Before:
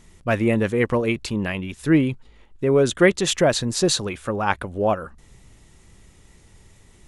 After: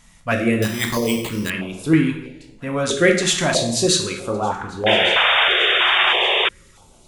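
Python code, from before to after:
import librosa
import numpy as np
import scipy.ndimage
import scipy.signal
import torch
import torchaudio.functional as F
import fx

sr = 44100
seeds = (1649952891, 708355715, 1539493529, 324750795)

p1 = fx.env_lowpass_down(x, sr, base_hz=780.0, full_db=-18.0, at=(4.23, 4.69))
p2 = fx.low_shelf(p1, sr, hz=320.0, db=-7.0)
p3 = p2 + fx.echo_thinned(p2, sr, ms=1161, feedback_pct=38, hz=420.0, wet_db=-23, dry=0)
p4 = fx.rev_plate(p3, sr, seeds[0], rt60_s=0.89, hf_ratio=0.7, predelay_ms=0, drr_db=1.5)
p5 = fx.resample_bad(p4, sr, factor=8, down='none', up='hold', at=(0.62, 1.5))
p6 = fx.spec_paint(p5, sr, seeds[1], shape='noise', start_s=4.86, length_s=1.63, low_hz=340.0, high_hz=3700.0, level_db=-18.0)
p7 = fx.filter_held_notch(p6, sr, hz=3.1, low_hz=380.0, high_hz=1800.0)
y = p7 * librosa.db_to_amplitude(3.0)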